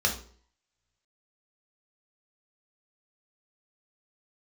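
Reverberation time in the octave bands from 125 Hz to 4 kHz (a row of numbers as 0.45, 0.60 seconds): 0.50, 0.55, 0.55, 0.50, 0.40, 0.40 seconds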